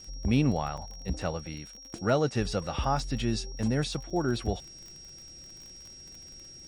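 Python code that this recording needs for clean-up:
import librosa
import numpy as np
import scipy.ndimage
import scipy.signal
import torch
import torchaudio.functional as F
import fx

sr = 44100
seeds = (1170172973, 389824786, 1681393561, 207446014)

y = fx.fix_declick_ar(x, sr, threshold=6.5)
y = fx.notch(y, sr, hz=5600.0, q=30.0)
y = fx.fix_interpolate(y, sr, at_s=(0.77, 4.1), length_ms=5.6)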